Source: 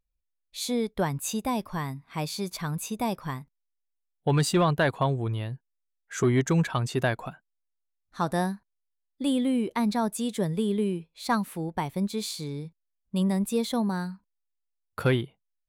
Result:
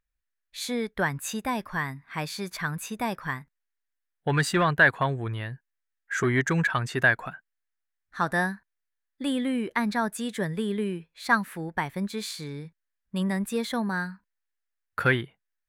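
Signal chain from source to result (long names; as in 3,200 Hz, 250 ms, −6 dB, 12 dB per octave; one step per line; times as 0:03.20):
parametric band 1,700 Hz +14.5 dB 0.85 octaves
level −2.5 dB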